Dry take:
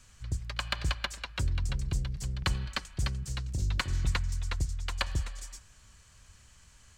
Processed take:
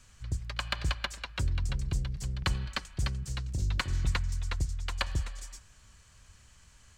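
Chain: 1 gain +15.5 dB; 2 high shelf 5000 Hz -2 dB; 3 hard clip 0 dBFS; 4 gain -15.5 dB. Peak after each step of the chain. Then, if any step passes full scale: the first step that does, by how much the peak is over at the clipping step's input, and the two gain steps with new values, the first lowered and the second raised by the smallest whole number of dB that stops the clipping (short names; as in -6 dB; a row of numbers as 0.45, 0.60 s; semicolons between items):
-2.0, -2.0, -2.0, -17.5 dBFS; no overload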